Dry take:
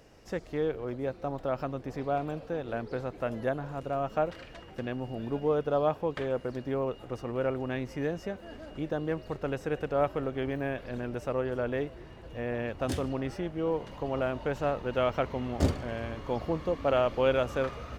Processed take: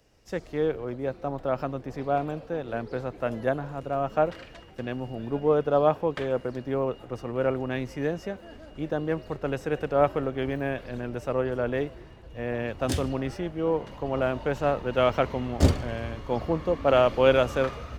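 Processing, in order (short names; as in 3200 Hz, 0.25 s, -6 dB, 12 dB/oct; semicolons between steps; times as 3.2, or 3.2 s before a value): three-band expander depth 40%; gain +4 dB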